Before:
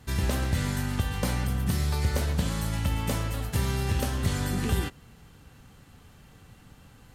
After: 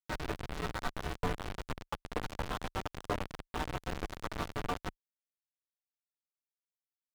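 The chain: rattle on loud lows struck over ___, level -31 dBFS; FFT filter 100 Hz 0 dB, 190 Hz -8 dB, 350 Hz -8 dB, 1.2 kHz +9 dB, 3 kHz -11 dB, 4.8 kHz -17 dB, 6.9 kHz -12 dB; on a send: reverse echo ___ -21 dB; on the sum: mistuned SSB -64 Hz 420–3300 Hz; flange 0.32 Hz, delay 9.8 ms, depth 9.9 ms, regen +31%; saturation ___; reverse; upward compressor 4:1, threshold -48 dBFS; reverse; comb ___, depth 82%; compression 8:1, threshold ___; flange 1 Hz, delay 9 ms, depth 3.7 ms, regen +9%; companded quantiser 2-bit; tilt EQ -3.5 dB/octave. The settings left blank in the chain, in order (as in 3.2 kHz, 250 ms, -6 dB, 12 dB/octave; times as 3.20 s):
-34 dBFS, 1092 ms, -26.5 dBFS, 6.8 ms, -38 dBFS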